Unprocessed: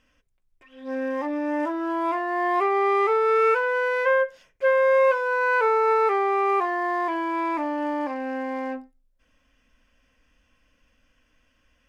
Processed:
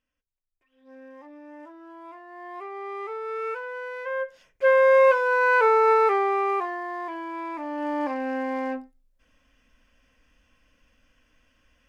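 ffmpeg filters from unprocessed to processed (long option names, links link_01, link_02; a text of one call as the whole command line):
ffmpeg -i in.wav -af "volume=10.5dB,afade=type=in:start_time=2.23:duration=1.25:silence=0.421697,afade=type=in:start_time=4.1:duration=0.63:silence=0.223872,afade=type=out:start_time=5.89:duration=0.96:silence=0.334965,afade=type=in:start_time=7.59:duration=0.48:silence=0.375837" out.wav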